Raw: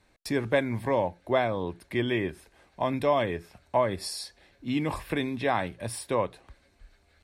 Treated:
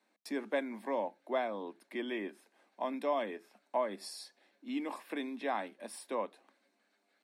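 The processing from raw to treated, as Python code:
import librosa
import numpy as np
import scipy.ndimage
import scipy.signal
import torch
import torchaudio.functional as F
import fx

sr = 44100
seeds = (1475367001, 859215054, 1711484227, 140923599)

y = scipy.signal.sosfilt(scipy.signal.cheby1(6, 3, 200.0, 'highpass', fs=sr, output='sos'), x)
y = F.gain(torch.from_numpy(y), -7.5).numpy()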